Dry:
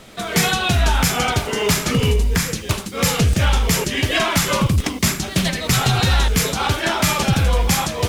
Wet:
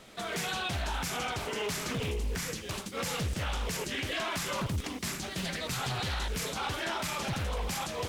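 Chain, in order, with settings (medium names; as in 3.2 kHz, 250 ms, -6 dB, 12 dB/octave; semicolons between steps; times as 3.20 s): bass shelf 210 Hz -5 dB; peak limiter -16 dBFS, peak gain reduction 9 dB; loudspeaker Doppler distortion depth 0.49 ms; trim -9 dB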